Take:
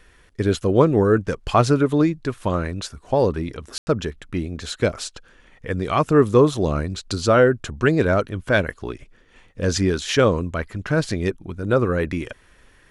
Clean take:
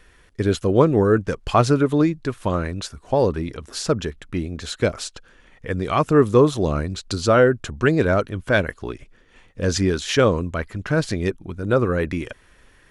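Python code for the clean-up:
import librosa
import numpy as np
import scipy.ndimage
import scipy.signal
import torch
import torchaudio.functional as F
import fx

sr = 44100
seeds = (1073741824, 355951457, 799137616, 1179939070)

y = fx.fix_ambience(x, sr, seeds[0], print_start_s=9.07, print_end_s=9.57, start_s=3.78, end_s=3.87)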